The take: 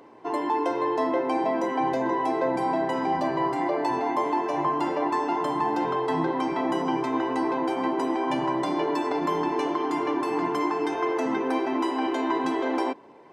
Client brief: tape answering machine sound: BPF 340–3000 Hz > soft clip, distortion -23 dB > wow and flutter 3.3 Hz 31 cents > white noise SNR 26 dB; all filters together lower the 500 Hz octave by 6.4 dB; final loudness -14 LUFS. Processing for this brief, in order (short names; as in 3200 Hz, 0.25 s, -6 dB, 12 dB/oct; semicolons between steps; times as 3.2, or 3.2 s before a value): BPF 340–3000 Hz; bell 500 Hz -7 dB; soft clip -20 dBFS; wow and flutter 3.3 Hz 31 cents; white noise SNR 26 dB; gain +17 dB